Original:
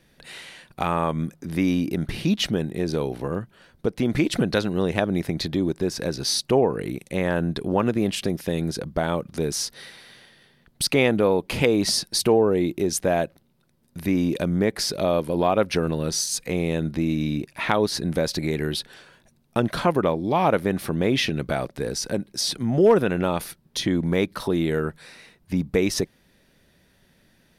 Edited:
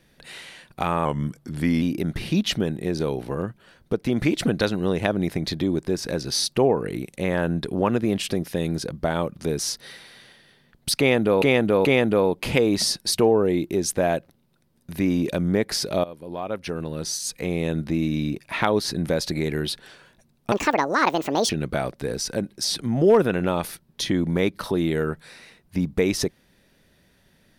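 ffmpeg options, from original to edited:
ffmpeg -i in.wav -filter_complex "[0:a]asplit=8[link_01][link_02][link_03][link_04][link_05][link_06][link_07][link_08];[link_01]atrim=end=1.054[link_09];[link_02]atrim=start=1.05:end=1.75,asetpts=PTS-STARTPTS,asetrate=40131,aresample=44100,atrim=end_sample=33923,asetpts=PTS-STARTPTS[link_10];[link_03]atrim=start=1.746:end=11.352[link_11];[link_04]atrim=start=10.918:end=11.352[link_12];[link_05]atrim=start=10.918:end=15.11,asetpts=PTS-STARTPTS,afade=type=out:start_time=4.188:duration=0.004:curve=hsin:silence=0.11885[link_13];[link_06]atrim=start=15.11:end=19.594,asetpts=PTS-STARTPTS,afade=type=in:duration=1.74:silence=0.11885[link_14];[link_07]atrim=start=19.59:end=21.26,asetpts=PTS-STARTPTS,asetrate=75411,aresample=44100,atrim=end_sample=43068,asetpts=PTS-STARTPTS[link_15];[link_08]atrim=start=21.256[link_16];[link_09][link_10]acrossfade=duration=0.004:curve1=hsin:curve2=hsin[link_17];[link_17][link_11]acrossfade=duration=0.004:curve1=hsin:curve2=hsin[link_18];[link_18][link_12]acrossfade=duration=0.004:curve1=hsin:curve2=hsin[link_19];[link_13][link_14]concat=n=2:v=0:a=1[link_20];[link_19][link_20]acrossfade=duration=0.004:curve1=hsin:curve2=hsin[link_21];[link_21][link_15]acrossfade=duration=0.004:curve1=hsin:curve2=hsin[link_22];[link_22][link_16]acrossfade=duration=0.004:curve1=hsin:curve2=hsin" out.wav

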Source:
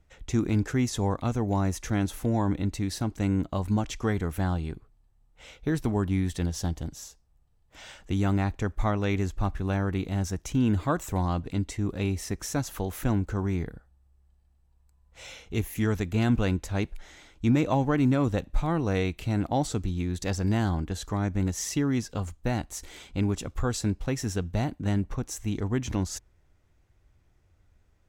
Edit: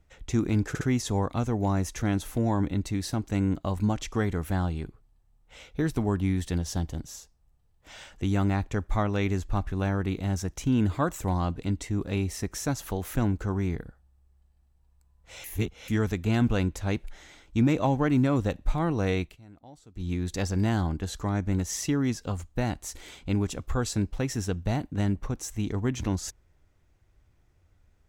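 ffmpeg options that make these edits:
ffmpeg -i in.wav -filter_complex "[0:a]asplit=7[link_01][link_02][link_03][link_04][link_05][link_06][link_07];[link_01]atrim=end=0.752[link_08];[link_02]atrim=start=0.688:end=0.752[link_09];[link_03]atrim=start=0.688:end=15.322[link_10];[link_04]atrim=start=15.318:end=15.762,asetpts=PTS-STARTPTS,areverse[link_11];[link_05]atrim=start=15.758:end=19.24,asetpts=PTS-STARTPTS,afade=type=out:start_time=3.352:duration=0.13:silence=0.0668344[link_12];[link_06]atrim=start=19.24:end=19.82,asetpts=PTS-STARTPTS,volume=-23.5dB[link_13];[link_07]atrim=start=19.82,asetpts=PTS-STARTPTS,afade=type=in:duration=0.13:silence=0.0668344[link_14];[link_08][link_09]acrossfade=duration=0.004:curve1=hsin:curve2=hsin[link_15];[link_15][link_10]acrossfade=duration=0.004:curve1=hsin:curve2=hsin[link_16];[link_16][link_11]acrossfade=duration=0.004:curve1=hsin:curve2=hsin[link_17];[link_12][link_13][link_14]concat=n=3:v=0:a=1[link_18];[link_17][link_18]acrossfade=duration=0.004:curve1=hsin:curve2=hsin" out.wav

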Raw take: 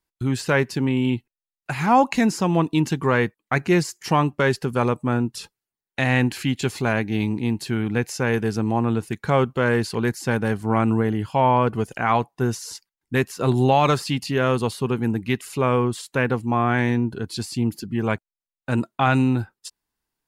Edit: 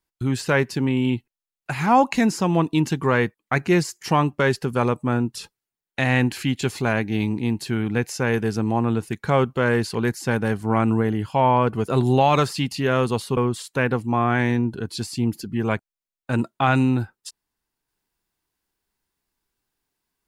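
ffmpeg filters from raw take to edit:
ffmpeg -i in.wav -filter_complex "[0:a]asplit=3[link_01][link_02][link_03];[link_01]atrim=end=11.882[link_04];[link_02]atrim=start=13.388:end=14.882[link_05];[link_03]atrim=start=15.758[link_06];[link_04][link_05]acrossfade=duration=0.004:curve1=hsin:curve2=hsin[link_07];[link_07][link_06]acrossfade=duration=0.004:curve1=hsin:curve2=hsin" out.wav

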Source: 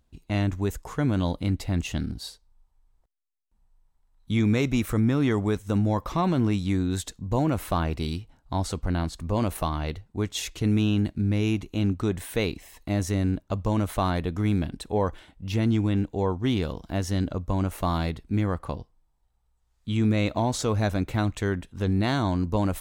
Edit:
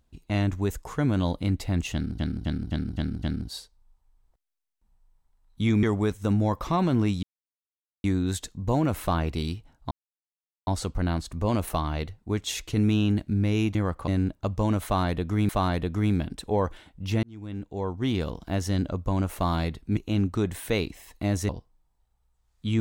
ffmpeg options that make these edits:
ffmpeg -i in.wav -filter_complex "[0:a]asplit=15[link_01][link_02][link_03][link_04][link_05][link_06][link_07][link_08][link_09][link_10][link_11][link_12][link_13][link_14][link_15];[link_01]atrim=end=2.192[link_16];[link_02]atrim=start=1.928:end=2.192[link_17];[link_03]atrim=start=1.928:end=2.192[link_18];[link_04]atrim=start=1.928:end=2.192[link_19];[link_05]atrim=start=1.928:end=2.192[link_20];[link_06]atrim=start=1.928:end=4.532[link_21];[link_07]atrim=start=5.278:end=6.68,asetpts=PTS-STARTPTS,afade=type=out:start_time=1.398:duration=0.004:curve=hsin,apad=pad_dur=0.81[link_22];[link_08]atrim=start=6.68:end=8.55,asetpts=PTS-STARTPTS,afade=type=in:duration=0.004:curve=hsin,afade=type=out:start_time=1.866:duration=0.004:curve=hsin,apad=pad_dur=0.76[link_23];[link_09]atrim=start=8.55:end=11.632,asetpts=PTS-STARTPTS,afade=type=in:duration=0.004:curve=hsin[link_24];[link_10]atrim=start=18.388:end=18.722[link_25];[link_11]atrim=start=13.148:end=14.562[link_26];[link_12]atrim=start=13.908:end=15.65,asetpts=PTS-STARTPTS,afade=type=out:start_time=1.738:duration=0.004:curve=hsin[link_27];[link_13]atrim=start=15.65:end=18.392,asetpts=PTS-STARTPTS,afade=type=in:duration=1.05[link_28];[link_14]atrim=start=11.628:end=13.152[link_29];[link_15]atrim=start=18.718[link_30];[link_16][link_17]acrossfade=duration=0.004:curve1=hsin:curve2=hsin[link_31];[link_31][link_18]acrossfade=duration=0.004:curve1=hsin:curve2=hsin[link_32];[link_32][link_19]acrossfade=duration=0.004:curve1=hsin:curve2=hsin[link_33];[link_33][link_20]acrossfade=duration=0.004:curve1=hsin:curve2=hsin[link_34];[link_34][link_21]acrossfade=duration=0.004:curve1=hsin:curve2=hsin[link_35];[link_22][link_23][link_24]concat=n=3:v=0:a=1[link_36];[link_35][link_36]acrossfade=duration=0.004:curve1=hsin:curve2=hsin[link_37];[link_37][link_25]acrossfade=duration=0.004:curve1=hsin:curve2=hsin[link_38];[link_38][link_26]acrossfade=duration=0.004:curve1=hsin:curve2=hsin[link_39];[link_27][link_28]concat=n=2:v=0:a=1[link_40];[link_39][link_40]acrossfade=duration=0.004:curve1=hsin:curve2=hsin[link_41];[link_41][link_29]acrossfade=duration=0.004:curve1=hsin:curve2=hsin[link_42];[link_42][link_30]acrossfade=duration=0.004:curve1=hsin:curve2=hsin" out.wav

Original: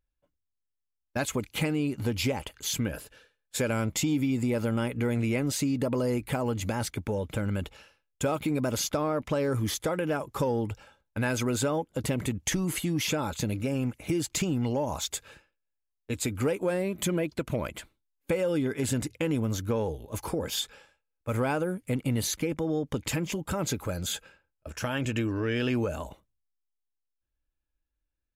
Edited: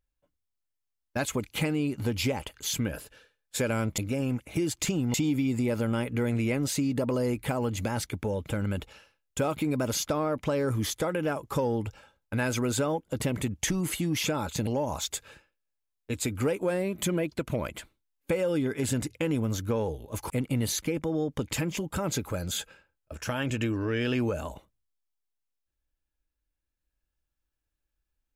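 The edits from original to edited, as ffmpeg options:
ffmpeg -i in.wav -filter_complex "[0:a]asplit=5[link_01][link_02][link_03][link_04][link_05];[link_01]atrim=end=3.982[link_06];[link_02]atrim=start=13.508:end=14.672[link_07];[link_03]atrim=start=3.978:end=13.512[link_08];[link_04]atrim=start=14.668:end=20.302[link_09];[link_05]atrim=start=21.848[link_10];[link_06][link_07]acrossfade=duration=0.004:curve1=hsin:curve2=hsin[link_11];[link_11][link_08]acrossfade=duration=0.004:curve1=hsin:curve2=hsin[link_12];[link_12][link_09]acrossfade=duration=0.004:curve1=hsin:curve2=hsin[link_13];[link_13][link_10]acrossfade=duration=0.004:curve1=hsin:curve2=hsin" out.wav

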